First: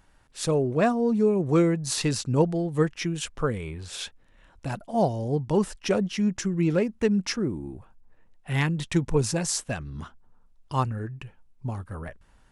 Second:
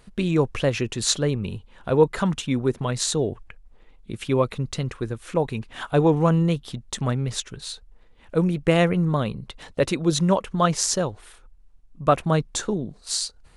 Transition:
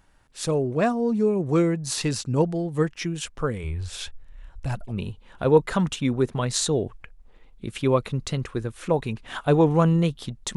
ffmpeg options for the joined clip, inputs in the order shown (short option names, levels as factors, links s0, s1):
-filter_complex "[0:a]asplit=3[s0][s1][s2];[s0]afade=t=out:st=3.63:d=0.02[s3];[s1]asubboost=boost=8:cutoff=84,afade=t=in:st=3.63:d=0.02,afade=t=out:st=4.93:d=0.02[s4];[s2]afade=t=in:st=4.93:d=0.02[s5];[s3][s4][s5]amix=inputs=3:normalize=0,apad=whole_dur=10.56,atrim=end=10.56,atrim=end=4.93,asetpts=PTS-STARTPTS[s6];[1:a]atrim=start=1.33:end=7.02,asetpts=PTS-STARTPTS[s7];[s6][s7]acrossfade=d=0.06:c1=tri:c2=tri"